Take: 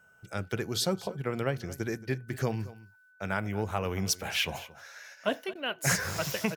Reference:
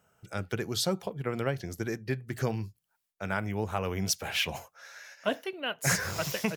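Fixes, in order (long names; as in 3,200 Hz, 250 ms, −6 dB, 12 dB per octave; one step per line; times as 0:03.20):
notch filter 1,500 Hz, Q 30
repair the gap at 0:05.54, 11 ms
echo removal 224 ms −18 dB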